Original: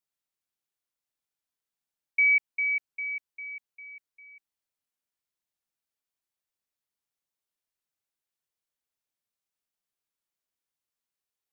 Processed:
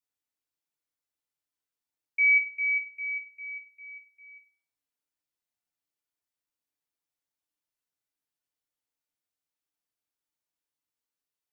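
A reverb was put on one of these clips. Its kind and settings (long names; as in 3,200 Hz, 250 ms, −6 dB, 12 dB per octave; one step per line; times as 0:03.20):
feedback delay network reverb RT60 0.52 s, low-frequency decay 1.05×, high-frequency decay 0.7×, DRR 1 dB
level −4.5 dB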